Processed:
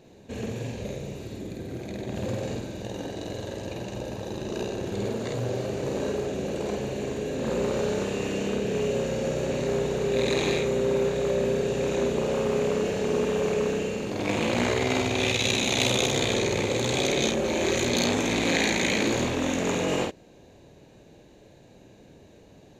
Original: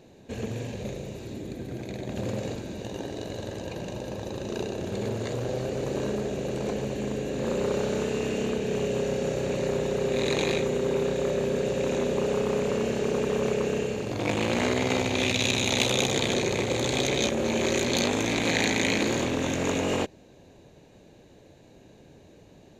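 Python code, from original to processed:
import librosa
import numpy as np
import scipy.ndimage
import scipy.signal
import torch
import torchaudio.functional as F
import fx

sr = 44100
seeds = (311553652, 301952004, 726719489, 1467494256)

y = fx.doubler(x, sr, ms=50.0, db=-3)
y = y * librosa.db_to_amplitude(-1.0)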